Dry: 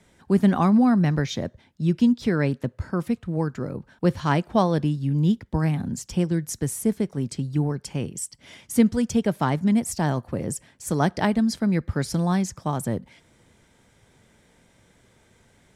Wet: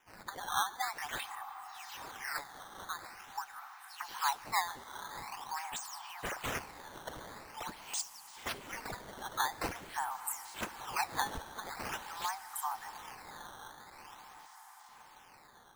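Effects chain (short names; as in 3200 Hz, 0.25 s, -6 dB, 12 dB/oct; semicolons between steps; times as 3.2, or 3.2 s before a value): spectral delay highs early, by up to 0.244 s; steep high-pass 780 Hz 96 dB/oct; bell 3200 Hz -6.5 dB 2 oct; on a send: diffused feedback echo 0.812 s, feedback 64%, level -14 dB; on the sum: decimation with a swept rate 10×, swing 160% 0.46 Hz; in parallel at -2 dB: compressor, threshold -39 dBFS, peak gain reduction 15.5 dB; on the sum: plate-style reverb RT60 2.9 s, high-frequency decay 1×, DRR 18 dB; gain -5 dB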